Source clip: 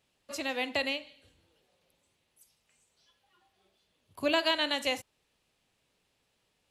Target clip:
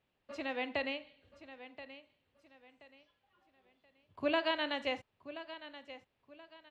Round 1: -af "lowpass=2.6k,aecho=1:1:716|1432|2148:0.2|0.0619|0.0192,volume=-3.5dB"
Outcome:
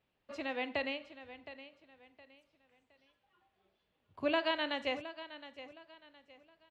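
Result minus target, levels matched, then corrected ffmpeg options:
echo 0.312 s early
-af "lowpass=2.6k,aecho=1:1:1028|2056|3084:0.2|0.0619|0.0192,volume=-3.5dB"

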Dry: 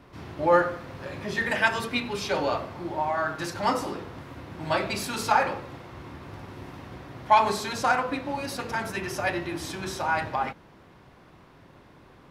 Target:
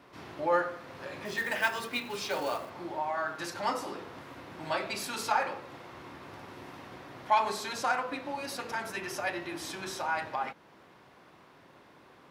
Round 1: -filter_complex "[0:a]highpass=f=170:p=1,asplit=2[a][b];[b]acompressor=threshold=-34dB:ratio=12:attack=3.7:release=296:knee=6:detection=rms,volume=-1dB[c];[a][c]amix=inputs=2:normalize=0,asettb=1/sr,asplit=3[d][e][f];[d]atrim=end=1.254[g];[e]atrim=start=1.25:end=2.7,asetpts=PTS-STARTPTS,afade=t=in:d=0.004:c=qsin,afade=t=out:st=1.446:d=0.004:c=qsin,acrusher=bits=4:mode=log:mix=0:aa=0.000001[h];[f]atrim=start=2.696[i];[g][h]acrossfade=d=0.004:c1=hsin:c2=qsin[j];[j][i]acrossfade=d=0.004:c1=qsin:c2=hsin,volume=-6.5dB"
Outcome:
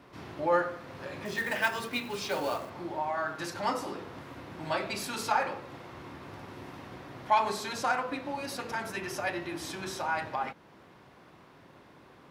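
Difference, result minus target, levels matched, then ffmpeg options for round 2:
125 Hz band +4.0 dB
-filter_complex "[0:a]highpass=f=360:p=1,asplit=2[a][b];[b]acompressor=threshold=-34dB:ratio=12:attack=3.7:release=296:knee=6:detection=rms,volume=-1dB[c];[a][c]amix=inputs=2:normalize=0,asettb=1/sr,asplit=3[d][e][f];[d]atrim=end=1.254[g];[e]atrim=start=1.25:end=2.7,asetpts=PTS-STARTPTS,afade=t=in:d=0.004:c=qsin,afade=t=out:st=1.446:d=0.004:c=qsin,acrusher=bits=4:mode=log:mix=0:aa=0.000001[h];[f]atrim=start=2.696[i];[g][h]acrossfade=d=0.004:c1=hsin:c2=qsin[j];[j][i]acrossfade=d=0.004:c1=qsin:c2=hsin,volume=-6.5dB"

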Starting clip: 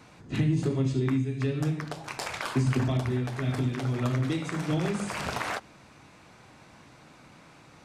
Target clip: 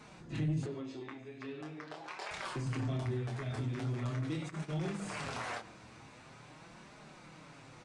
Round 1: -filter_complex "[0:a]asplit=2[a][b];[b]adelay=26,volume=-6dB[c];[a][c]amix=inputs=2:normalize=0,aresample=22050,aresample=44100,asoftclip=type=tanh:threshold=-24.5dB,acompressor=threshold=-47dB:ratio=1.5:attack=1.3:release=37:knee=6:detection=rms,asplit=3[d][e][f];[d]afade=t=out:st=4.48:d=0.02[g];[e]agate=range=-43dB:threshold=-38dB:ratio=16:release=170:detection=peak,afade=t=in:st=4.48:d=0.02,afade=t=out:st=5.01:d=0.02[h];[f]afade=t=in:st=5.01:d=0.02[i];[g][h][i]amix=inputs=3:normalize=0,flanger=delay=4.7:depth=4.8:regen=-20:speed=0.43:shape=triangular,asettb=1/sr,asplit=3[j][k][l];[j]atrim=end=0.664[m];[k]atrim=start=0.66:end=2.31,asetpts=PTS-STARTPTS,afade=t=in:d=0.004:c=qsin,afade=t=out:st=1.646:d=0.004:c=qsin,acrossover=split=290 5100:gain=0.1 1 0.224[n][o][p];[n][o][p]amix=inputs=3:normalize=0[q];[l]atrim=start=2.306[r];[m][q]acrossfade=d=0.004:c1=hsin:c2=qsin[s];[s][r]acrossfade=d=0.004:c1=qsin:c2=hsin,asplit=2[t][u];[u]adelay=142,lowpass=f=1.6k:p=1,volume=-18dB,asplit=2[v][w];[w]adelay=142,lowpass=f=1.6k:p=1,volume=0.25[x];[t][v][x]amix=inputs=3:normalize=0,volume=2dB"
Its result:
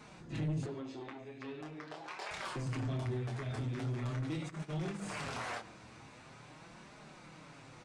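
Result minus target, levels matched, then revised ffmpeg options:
soft clip: distortion +8 dB
-filter_complex "[0:a]asplit=2[a][b];[b]adelay=26,volume=-6dB[c];[a][c]amix=inputs=2:normalize=0,aresample=22050,aresample=44100,asoftclip=type=tanh:threshold=-17.5dB,acompressor=threshold=-47dB:ratio=1.5:attack=1.3:release=37:knee=6:detection=rms,asplit=3[d][e][f];[d]afade=t=out:st=4.48:d=0.02[g];[e]agate=range=-43dB:threshold=-38dB:ratio=16:release=170:detection=peak,afade=t=in:st=4.48:d=0.02,afade=t=out:st=5.01:d=0.02[h];[f]afade=t=in:st=5.01:d=0.02[i];[g][h][i]amix=inputs=3:normalize=0,flanger=delay=4.7:depth=4.8:regen=-20:speed=0.43:shape=triangular,asettb=1/sr,asplit=3[j][k][l];[j]atrim=end=0.664[m];[k]atrim=start=0.66:end=2.31,asetpts=PTS-STARTPTS,afade=t=in:d=0.004:c=qsin,afade=t=out:st=1.646:d=0.004:c=qsin,acrossover=split=290 5100:gain=0.1 1 0.224[n][o][p];[n][o][p]amix=inputs=3:normalize=0[q];[l]atrim=start=2.306[r];[m][q]acrossfade=d=0.004:c1=hsin:c2=qsin[s];[s][r]acrossfade=d=0.004:c1=qsin:c2=hsin,asplit=2[t][u];[u]adelay=142,lowpass=f=1.6k:p=1,volume=-18dB,asplit=2[v][w];[w]adelay=142,lowpass=f=1.6k:p=1,volume=0.25[x];[t][v][x]amix=inputs=3:normalize=0,volume=2dB"

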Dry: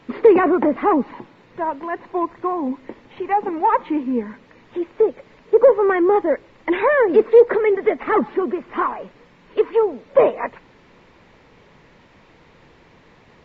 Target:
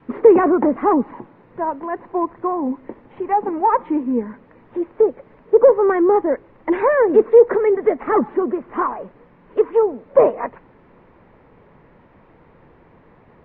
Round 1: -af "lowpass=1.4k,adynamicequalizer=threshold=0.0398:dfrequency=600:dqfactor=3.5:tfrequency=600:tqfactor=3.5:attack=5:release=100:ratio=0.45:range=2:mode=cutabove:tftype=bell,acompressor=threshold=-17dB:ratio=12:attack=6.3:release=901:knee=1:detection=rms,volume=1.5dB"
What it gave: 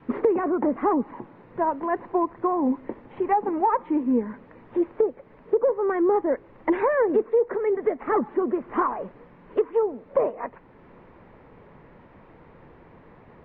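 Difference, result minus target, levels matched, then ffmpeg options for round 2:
compressor: peak gain reduction +12.5 dB
-af "lowpass=1.4k,adynamicequalizer=threshold=0.0398:dfrequency=600:dqfactor=3.5:tfrequency=600:tqfactor=3.5:attack=5:release=100:ratio=0.45:range=2:mode=cutabove:tftype=bell,volume=1.5dB"

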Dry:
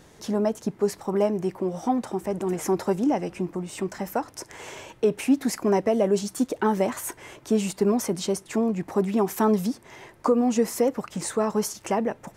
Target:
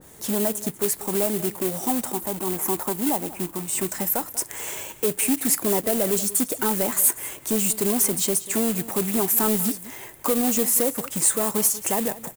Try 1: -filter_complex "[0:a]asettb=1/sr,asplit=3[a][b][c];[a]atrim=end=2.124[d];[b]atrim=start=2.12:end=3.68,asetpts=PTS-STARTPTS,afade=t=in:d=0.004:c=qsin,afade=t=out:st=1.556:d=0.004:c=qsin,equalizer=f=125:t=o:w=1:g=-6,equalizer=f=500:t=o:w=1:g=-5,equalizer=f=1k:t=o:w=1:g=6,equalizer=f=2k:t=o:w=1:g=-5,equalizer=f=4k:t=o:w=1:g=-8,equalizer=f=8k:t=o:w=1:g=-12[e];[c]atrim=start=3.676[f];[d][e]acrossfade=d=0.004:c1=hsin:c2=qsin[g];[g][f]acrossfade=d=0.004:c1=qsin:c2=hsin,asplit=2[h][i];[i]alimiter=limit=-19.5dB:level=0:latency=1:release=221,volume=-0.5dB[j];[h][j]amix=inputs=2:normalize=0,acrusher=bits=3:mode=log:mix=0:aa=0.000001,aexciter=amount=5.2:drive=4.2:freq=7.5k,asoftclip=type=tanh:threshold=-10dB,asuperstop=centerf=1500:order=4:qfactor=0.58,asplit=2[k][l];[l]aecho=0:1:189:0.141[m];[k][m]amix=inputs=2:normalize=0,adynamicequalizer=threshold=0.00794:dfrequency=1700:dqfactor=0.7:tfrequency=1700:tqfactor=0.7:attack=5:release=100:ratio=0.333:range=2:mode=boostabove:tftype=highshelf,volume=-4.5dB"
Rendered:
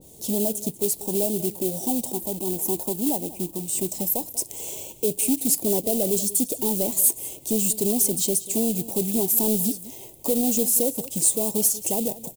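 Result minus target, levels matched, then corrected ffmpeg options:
2000 Hz band -13.0 dB
-filter_complex "[0:a]asettb=1/sr,asplit=3[a][b][c];[a]atrim=end=2.124[d];[b]atrim=start=2.12:end=3.68,asetpts=PTS-STARTPTS,afade=t=in:d=0.004:c=qsin,afade=t=out:st=1.556:d=0.004:c=qsin,equalizer=f=125:t=o:w=1:g=-6,equalizer=f=500:t=o:w=1:g=-5,equalizer=f=1k:t=o:w=1:g=6,equalizer=f=2k:t=o:w=1:g=-5,equalizer=f=4k:t=o:w=1:g=-8,equalizer=f=8k:t=o:w=1:g=-12[e];[c]atrim=start=3.676[f];[d][e]acrossfade=d=0.004:c1=hsin:c2=qsin[g];[g][f]acrossfade=d=0.004:c1=qsin:c2=hsin,asplit=2[h][i];[i]alimiter=limit=-19.5dB:level=0:latency=1:release=221,volume=-0.5dB[j];[h][j]amix=inputs=2:normalize=0,acrusher=bits=3:mode=log:mix=0:aa=0.000001,aexciter=amount=5.2:drive=4.2:freq=7.5k,asoftclip=type=tanh:threshold=-10dB,asplit=2[k][l];[l]aecho=0:1:189:0.141[m];[k][m]amix=inputs=2:normalize=0,adynamicequalizer=threshold=0.00794:dfrequency=1700:dqfactor=0.7:tfrequency=1700:tqfactor=0.7:attack=5:release=100:ratio=0.333:range=2:mode=boostabove:tftype=highshelf,volume=-4.5dB"

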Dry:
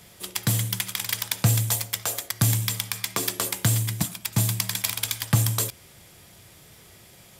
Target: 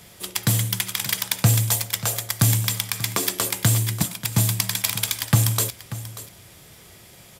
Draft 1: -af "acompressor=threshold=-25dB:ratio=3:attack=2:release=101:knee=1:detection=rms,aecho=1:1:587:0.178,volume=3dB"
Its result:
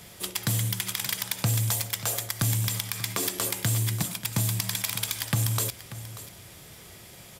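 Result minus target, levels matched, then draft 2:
compressor: peak gain reduction +10 dB
-af "aecho=1:1:587:0.178,volume=3dB"

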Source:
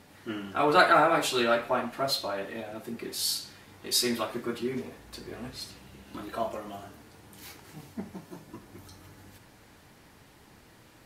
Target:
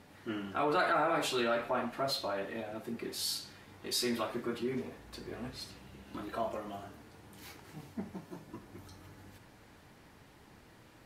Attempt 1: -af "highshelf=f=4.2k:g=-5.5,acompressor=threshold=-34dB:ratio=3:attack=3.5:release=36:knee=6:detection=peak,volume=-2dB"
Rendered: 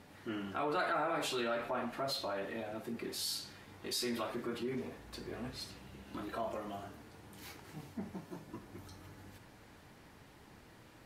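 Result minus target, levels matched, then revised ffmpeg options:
compressor: peak gain reduction +4.5 dB
-af "highshelf=f=4.2k:g=-5.5,acompressor=threshold=-27dB:ratio=3:attack=3.5:release=36:knee=6:detection=peak,volume=-2dB"

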